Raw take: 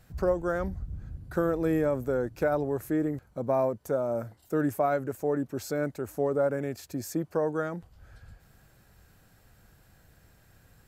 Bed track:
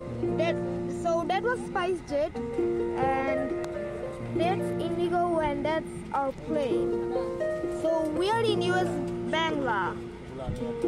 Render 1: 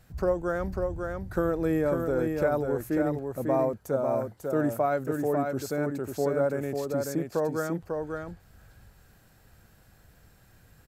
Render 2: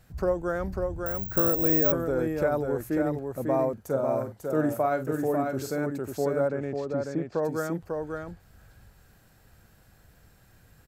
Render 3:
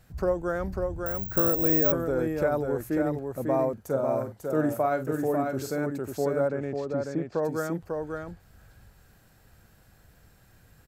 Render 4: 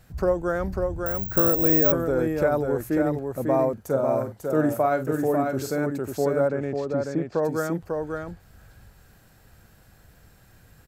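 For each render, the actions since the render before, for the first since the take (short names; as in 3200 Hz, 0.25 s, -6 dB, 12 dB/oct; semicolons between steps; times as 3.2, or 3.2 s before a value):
echo 0.546 s -4.5 dB
1.06–1.92 careless resampling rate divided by 2×, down filtered, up zero stuff; 3.73–5.84 doubler 45 ms -9.5 dB; 6.48–7.43 air absorption 140 m
nothing audible
gain +3.5 dB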